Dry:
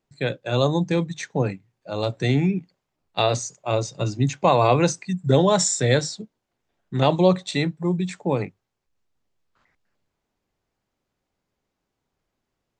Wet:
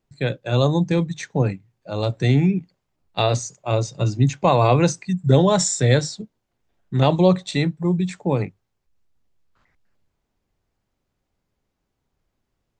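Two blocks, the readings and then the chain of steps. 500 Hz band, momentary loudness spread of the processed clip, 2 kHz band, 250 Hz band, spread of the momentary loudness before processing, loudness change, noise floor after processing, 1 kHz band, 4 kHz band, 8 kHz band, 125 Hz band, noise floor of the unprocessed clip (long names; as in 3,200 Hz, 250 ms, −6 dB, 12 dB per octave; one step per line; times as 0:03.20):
+0.5 dB, 11 LU, 0.0 dB, +2.5 dB, 11 LU, +2.0 dB, −77 dBFS, 0.0 dB, 0.0 dB, 0.0 dB, +4.5 dB, −81 dBFS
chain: low-shelf EQ 130 Hz +9.5 dB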